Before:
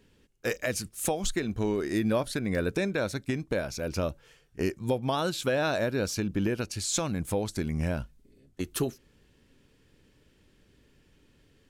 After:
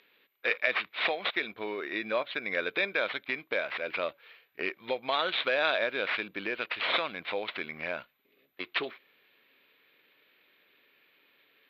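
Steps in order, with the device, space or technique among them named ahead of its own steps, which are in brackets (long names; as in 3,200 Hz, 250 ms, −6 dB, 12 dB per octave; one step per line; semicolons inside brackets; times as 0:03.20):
0:01.52–0:02.42: high-frequency loss of the air 140 metres
toy sound module (linearly interpolated sample-rate reduction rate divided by 6×; switching amplifier with a slow clock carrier 12,000 Hz; loudspeaker in its box 710–4,200 Hz, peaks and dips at 840 Hz −5 dB, 2,300 Hz +9 dB, 3,700 Hz +9 dB)
level +4 dB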